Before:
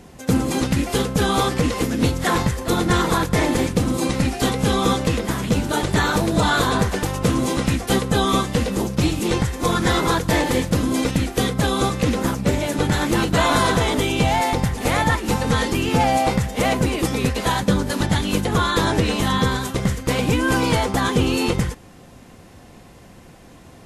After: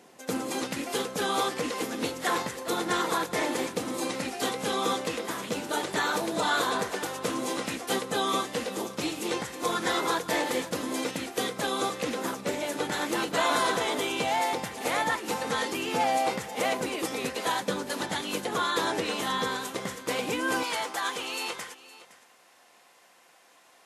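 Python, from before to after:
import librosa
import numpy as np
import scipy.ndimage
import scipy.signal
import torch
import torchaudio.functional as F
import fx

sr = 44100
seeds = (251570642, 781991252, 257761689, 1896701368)

y = fx.highpass(x, sr, hz=fx.steps((0.0, 350.0), (20.63, 810.0)), slope=12)
y = y + 10.0 ** (-17.5 / 20.0) * np.pad(y, (int(514 * sr / 1000.0), 0))[:len(y)]
y = F.gain(torch.from_numpy(y), -6.5).numpy()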